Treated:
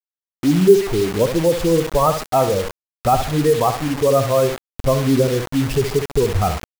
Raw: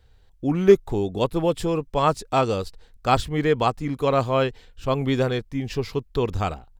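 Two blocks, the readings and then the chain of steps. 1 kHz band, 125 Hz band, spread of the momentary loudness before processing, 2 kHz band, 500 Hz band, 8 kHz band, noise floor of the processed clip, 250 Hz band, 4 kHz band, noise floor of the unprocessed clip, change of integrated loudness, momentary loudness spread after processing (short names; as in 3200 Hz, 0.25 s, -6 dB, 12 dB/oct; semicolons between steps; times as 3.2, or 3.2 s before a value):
+4.0 dB, +5.5 dB, 9 LU, +2.5 dB, +6.0 dB, +13.5 dB, under -85 dBFS, +5.5 dB, +4.5 dB, -55 dBFS, +5.5 dB, 6 LU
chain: spectral contrast raised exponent 1.9; recorder AGC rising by 9.3 dB/s; LPF 7500 Hz; on a send: flutter echo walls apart 11.4 m, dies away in 0.44 s; on the sum: bit-crush 5-bit; gain +3 dB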